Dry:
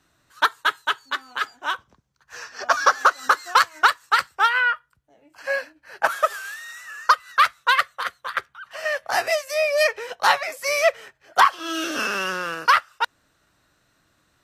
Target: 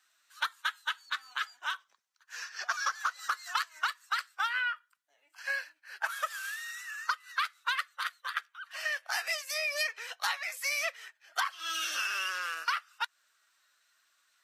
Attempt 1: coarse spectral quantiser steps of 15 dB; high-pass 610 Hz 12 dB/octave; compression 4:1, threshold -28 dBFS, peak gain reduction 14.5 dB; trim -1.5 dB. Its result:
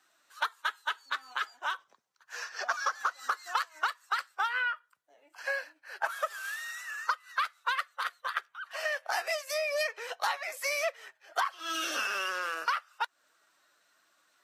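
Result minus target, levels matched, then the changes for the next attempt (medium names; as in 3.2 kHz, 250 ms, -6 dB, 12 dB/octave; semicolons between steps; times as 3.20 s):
500 Hz band +9.0 dB
change: high-pass 1.5 kHz 12 dB/octave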